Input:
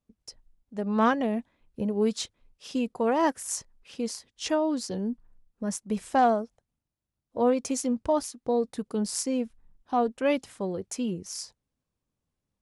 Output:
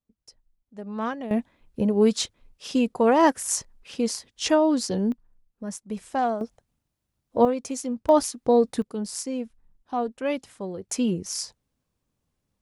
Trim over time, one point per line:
-6.5 dB
from 1.31 s +6 dB
from 5.12 s -3 dB
from 6.41 s +7.5 dB
from 7.45 s -2 dB
from 8.09 s +7 dB
from 8.82 s -2 dB
from 10.89 s +6 dB

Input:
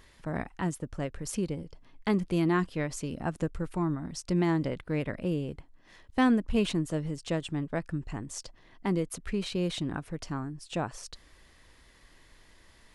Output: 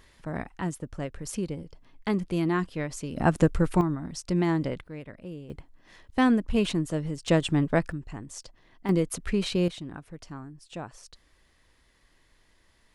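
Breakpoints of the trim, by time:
0 dB
from 3.16 s +10 dB
from 3.81 s +1.5 dB
from 4.87 s -9.5 dB
from 5.50 s +2 dB
from 7.28 s +8.5 dB
from 7.92 s -2 dB
from 8.89 s +5 dB
from 9.68 s -6 dB

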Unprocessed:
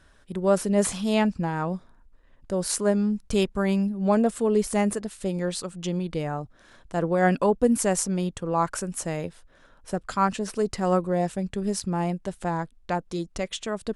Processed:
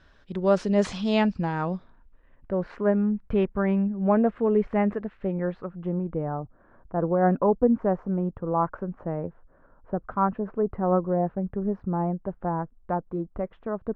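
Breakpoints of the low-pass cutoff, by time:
low-pass 24 dB/octave
1.61 s 5.2 kHz
2.54 s 2.1 kHz
5.17 s 2.1 kHz
6.10 s 1.3 kHz

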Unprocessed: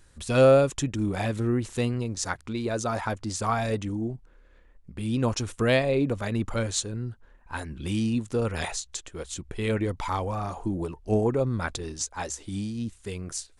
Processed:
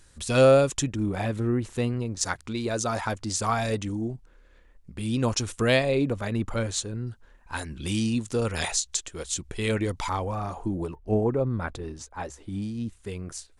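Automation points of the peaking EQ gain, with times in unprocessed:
peaking EQ 6.8 kHz 2.4 oct
+5 dB
from 0.93 s -4.5 dB
from 2.21 s +5 dB
from 6.06 s -1.5 dB
from 7.07 s +7.5 dB
from 10.09 s -2.5 dB
from 10.95 s -12.5 dB
from 12.62 s -5 dB

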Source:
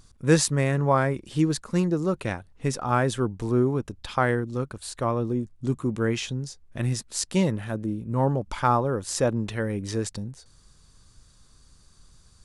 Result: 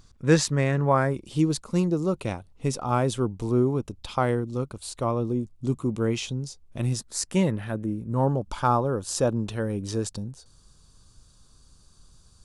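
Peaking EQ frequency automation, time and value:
peaking EQ -11 dB 0.47 oct
0.75 s 9.9 kHz
1.17 s 1.7 kHz
6.88 s 1.7 kHz
7.63 s 7.6 kHz
8.20 s 2 kHz

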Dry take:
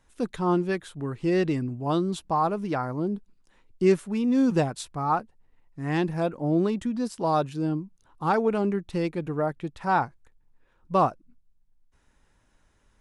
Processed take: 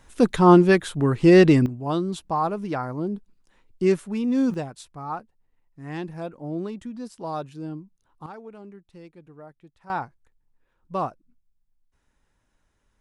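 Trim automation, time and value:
+10.5 dB
from 1.66 s 0 dB
from 4.54 s -7 dB
from 8.26 s -18 dB
from 9.90 s -5.5 dB

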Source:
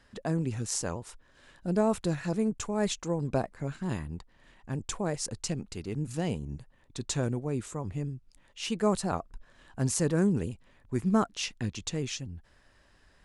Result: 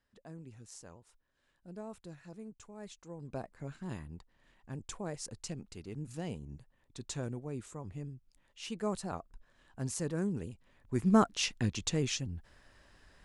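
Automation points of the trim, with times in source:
2.95 s -19 dB
3.57 s -8.5 dB
10.49 s -8.5 dB
11.19 s +1 dB

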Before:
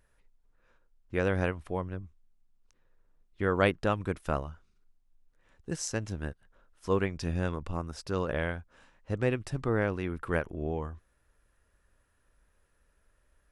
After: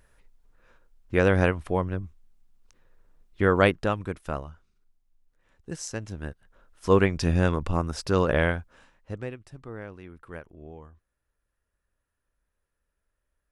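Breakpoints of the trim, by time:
3.44 s +7.5 dB
4.16 s -1 dB
6.09 s -1 dB
6.97 s +8.5 dB
8.48 s +8.5 dB
9.14 s -3 dB
9.38 s -11 dB

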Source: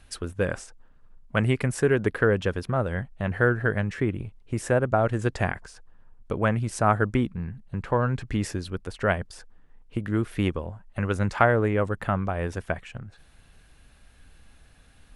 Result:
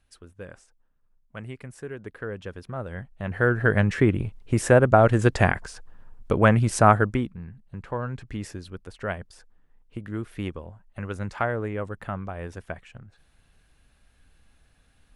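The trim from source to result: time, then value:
2.00 s -15 dB
3.22 s -4 dB
3.81 s +6 dB
6.84 s +6 dB
7.39 s -6.5 dB

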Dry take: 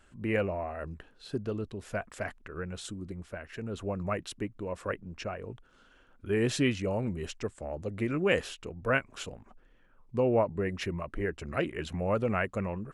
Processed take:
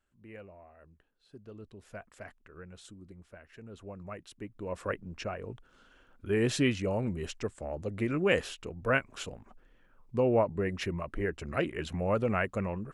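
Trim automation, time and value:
1.27 s -19 dB
1.69 s -10.5 dB
4.31 s -10.5 dB
4.73 s 0 dB

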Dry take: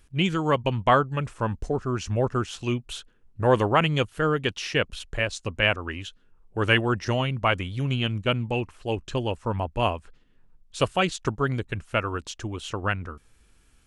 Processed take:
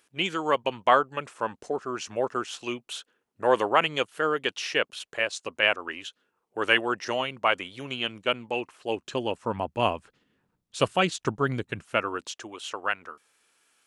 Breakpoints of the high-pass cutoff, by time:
8.50 s 390 Hz
9.90 s 140 Hz
11.65 s 140 Hz
12.61 s 550 Hz

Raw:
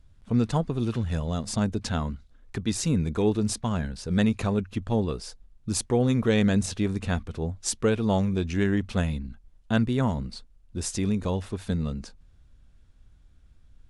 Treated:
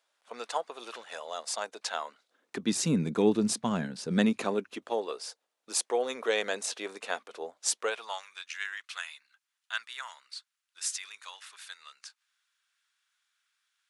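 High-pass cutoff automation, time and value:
high-pass 24 dB/octave
2.12 s 580 Hz
2.74 s 170 Hz
4.07 s 170 Hz
5.08 s 470 Hz
7.78 s 470 Hz
8.27 s 1.3 kHz

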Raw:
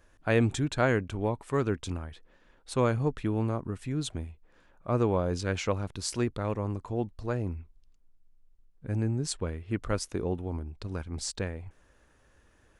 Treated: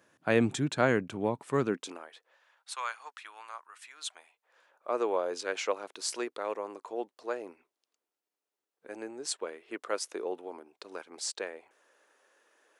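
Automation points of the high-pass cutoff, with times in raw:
high-pass 24 dB/octave
1.63 s 140 Hz
1.93 s 360 Hz
2.79 s 1 kHz
3.92 s 1 kHz
4.92 s 390 Hz

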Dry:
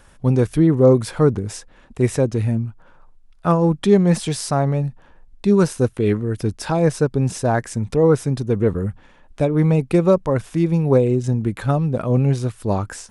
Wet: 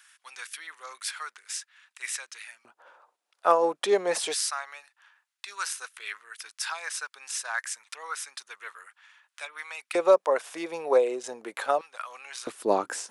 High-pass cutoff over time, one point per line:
high-pass 24 dB/octave
1.5 kHz
from 2.65 s 490 Hz
from 4.34 s 1.3 kHz
from 9.95 s 520 Hz
from 11.81 s 1.2 kHz
from 12.47 s 310 Hz

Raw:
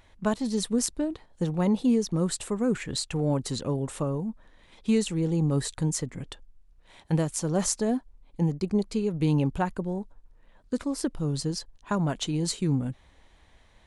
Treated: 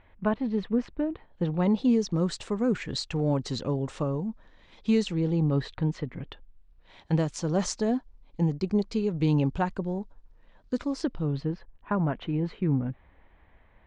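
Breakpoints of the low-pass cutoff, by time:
low-pass 24 dB/octave
1.12 s 2.7 kHz
1.94 s 6 kHz
4.96 s 6 kHz
5.80 s 3.4 kHz
6.30 s 3.4 kHz
7.15 s 6 kHz
10.97 s 6 kHz
11.55 s 2.4 kHz

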